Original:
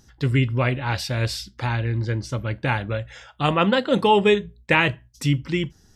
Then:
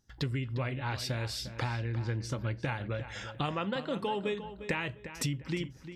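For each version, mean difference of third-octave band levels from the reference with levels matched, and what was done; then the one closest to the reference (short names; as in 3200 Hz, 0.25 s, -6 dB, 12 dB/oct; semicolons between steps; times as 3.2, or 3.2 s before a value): 5.5 dB: gate with hold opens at -43 dBFS; compressor 8:1, threshold -33 dBFS, peak gain reduction 20 dB; on a send: darkening echo 0.352 s, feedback 28%, low-pass 3600 Hz, level -11.5 dB; on the sum: gain +2 dB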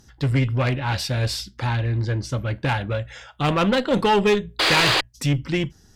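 3.5 dB: painted sound noise, 4.59–5.01, 300–5000 Hz -19 dBFS; tube stage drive 13 dB, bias 0.5; in parallel at -4 dB: hard clip -23.5 dBFS, distortion -8 dB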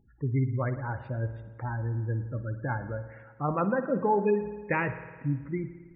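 9.0 dB: LPF 2000 Hz 24 dB/oct; spectral gate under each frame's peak -20 dB strong; spring tank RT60 1.5 s, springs 53 ms, chirp 55 ms, DRR 10.5 dB; gain -8 dB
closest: second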